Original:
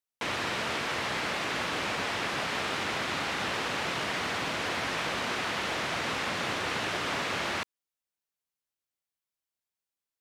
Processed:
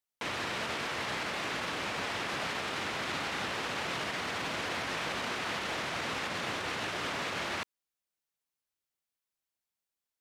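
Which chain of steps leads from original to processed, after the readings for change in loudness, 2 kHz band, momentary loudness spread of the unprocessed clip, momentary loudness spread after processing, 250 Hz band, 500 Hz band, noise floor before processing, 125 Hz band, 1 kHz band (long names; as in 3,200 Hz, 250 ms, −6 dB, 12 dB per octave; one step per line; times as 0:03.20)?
−3.5 dB, −3.5 dB, 0 LU, 1 LU, −3.5 dB, −3.5 dB, below −85 dBFS, −3.5 dB, −3.5 dB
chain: brickwall limiter −26 dBFS, peak gain reduction 7 dB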